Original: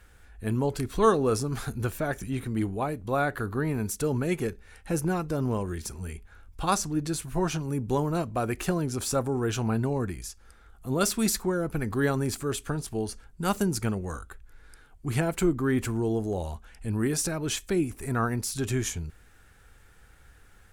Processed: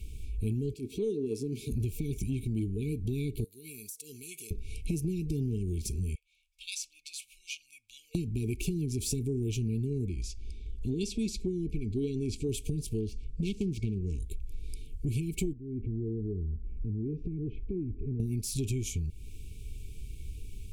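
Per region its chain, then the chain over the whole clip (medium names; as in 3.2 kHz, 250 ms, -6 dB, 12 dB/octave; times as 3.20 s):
0.74–1.72 s: high-pass 260 Hz + treble shelf 2.2 kHz -10.5 dB + transient shaper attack -8 dB, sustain 0 dB
3.44–4.51 s: differentiator + compression 12:1, threshold -45 dBFS
6.15–8.15 s: inverse Chebyshev high-pass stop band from 430 Hz, stop band 70 dB + tilt EQ -4.5 dB/octave
10.09–12.49 s: low-pass 5.5 kHz + peaking EQ 140 Hz -6.5 dB 0.43 oct
13.00–14.20 s: self-modulated delay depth 0.34 ms + distance through air 82 m
15.53–18.20 s: low-pass 1.3 kHz 24 dB/octave + compression 2:1, threshold -48 dBFS
whole clip: FFT band-reject 460–2200 Hz; bass shelf 150 Hz +11 dB; compression 6:1, threshold -36 dBFS; trim +6 dB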